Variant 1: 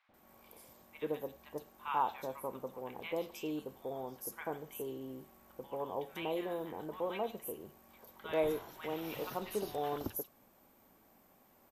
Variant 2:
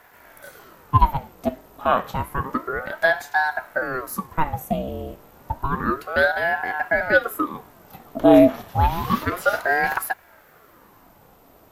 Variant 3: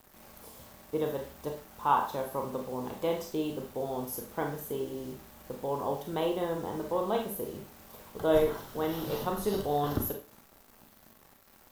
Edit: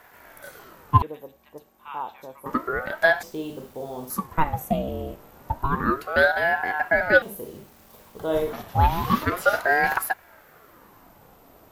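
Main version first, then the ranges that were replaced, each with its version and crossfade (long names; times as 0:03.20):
2
0:01.02–0:02.46: punch in from 1
0:03.23–0:04.10: punch in from 3
0:07.22–0:08.53: punch in from 3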